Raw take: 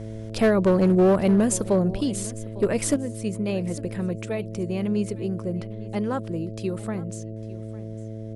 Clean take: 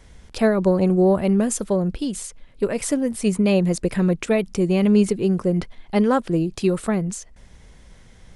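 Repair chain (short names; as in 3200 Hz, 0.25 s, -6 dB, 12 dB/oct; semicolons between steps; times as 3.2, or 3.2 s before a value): clip repair -13 dBFS; de-hum 109.9 Hz, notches 6; inverse comb 0.853 s -19 dB; gain 0 dB, from 2.96 s +9 dB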